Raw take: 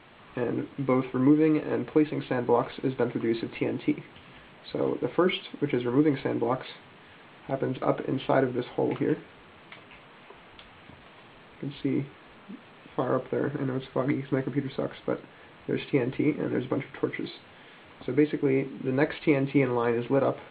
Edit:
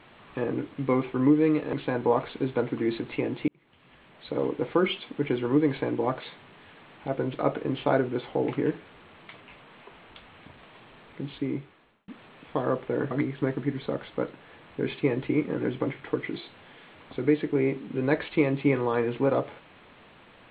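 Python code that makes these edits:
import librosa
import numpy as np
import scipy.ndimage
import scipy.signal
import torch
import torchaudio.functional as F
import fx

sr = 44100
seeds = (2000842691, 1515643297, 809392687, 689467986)

y = fx.edit(x, sr, fx.cut(start_s=1.73, length_s=0.43),
    fx.fade_in_span(start_s=3.91, length_s=0.93),
    fx.fade_out_span(start_s=11.72, length_s=0.79),
    fx.cut(start_s=13.54, length_s=0.47), tone=tone)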